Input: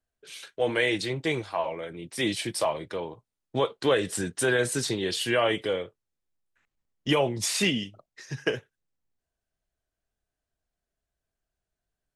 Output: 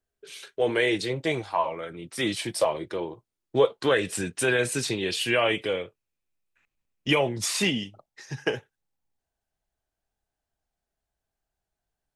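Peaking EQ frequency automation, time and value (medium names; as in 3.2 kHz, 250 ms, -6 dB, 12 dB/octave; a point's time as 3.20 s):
peaking EQ +10 dB 0.25 oct
0.98 s 400 Hz
1.79 s 1.3 kHz
2.35 s 1.3 kHz
2.76 s 350 Hz
3.56 s 350 Hz
4.03 s 2.5 kHz
7.10 s 2.5 kHz
7.68 s 830 Hz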